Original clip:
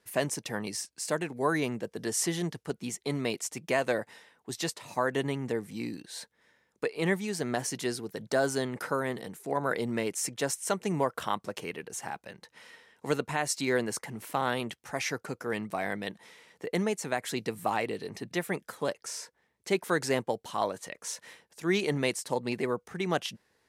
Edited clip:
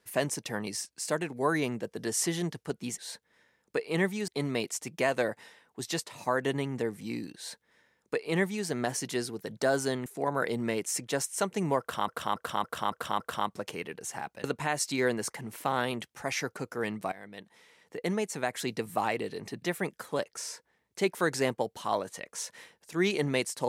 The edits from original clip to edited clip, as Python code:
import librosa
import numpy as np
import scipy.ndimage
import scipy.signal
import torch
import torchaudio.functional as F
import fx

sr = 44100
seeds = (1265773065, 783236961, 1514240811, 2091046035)

y = fx.edit(x, sr, fx.duplicate(start_s=6.06, length_s=1.3, to_s=2.98),
    fx.cut(start_s=8.76, length_s=0.59),
    fx.repeat(start_s=11.09, length_s=0.28, count=6),
    fx.cut(start_s=12.33, length_s=0.8),
    fx.fade_in_from(start_s=15.81, length_s=1.65, curve='qsin', floor_db=-18.0), tone=tone)